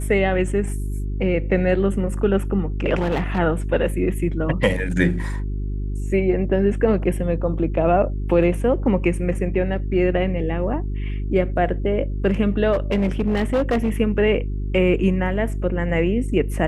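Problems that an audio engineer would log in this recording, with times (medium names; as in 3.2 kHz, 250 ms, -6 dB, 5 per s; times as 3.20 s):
hum 50 Hz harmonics 8 -25 dBFS
2.97–3.39 s: clipped -17 dBFS
12.72–14.00 s: clipped -15 dBFS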